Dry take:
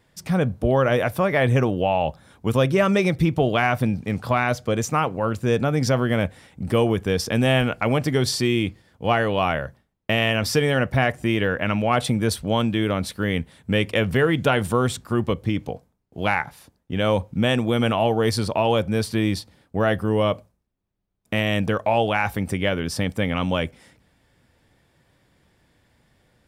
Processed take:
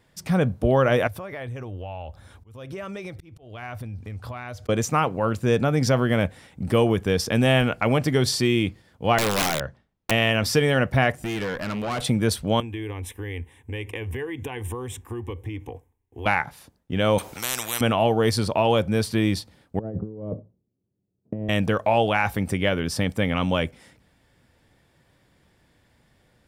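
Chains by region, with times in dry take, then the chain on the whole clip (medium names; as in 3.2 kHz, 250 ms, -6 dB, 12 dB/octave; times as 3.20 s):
1.07–4.69 s: resonant low shelf 120 Hz +6.5 dB, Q 3 + compression 4:1, threshold -34 dBFS + slow attack 283 ms
9.18–10.11 s: low-pass 5.8 kHz + integer overflow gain 16.5 dB
11.15–12.01 s: treble shelf 7.7 kHz +9.5 dB + valve stage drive 24 dB, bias 0.5
12.60–16.26 s: compression 5:1, threshold -26 dBFS + peaking EQ 92 Hz +8.5 dB 0.59 oct + static phaser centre 910 Hz, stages 8
17.18–17.81 s: treble shelf 5.2 kHz +8 dB + spectrum-flattening compressor 10:1
19.79–21.49 s: Chebyshev band-pass 110–420 Hz + compressor with a negative ratio -29 dBFS, ratio -0.5
whole clip: none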